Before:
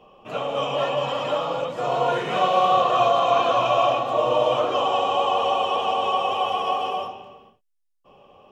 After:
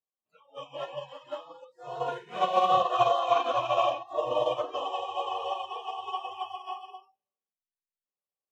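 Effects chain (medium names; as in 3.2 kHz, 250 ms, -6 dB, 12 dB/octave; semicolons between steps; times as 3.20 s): spectral noise reduction 27 dB; upward expansion 2.5:1, over -32 dBFS; trim -2 dB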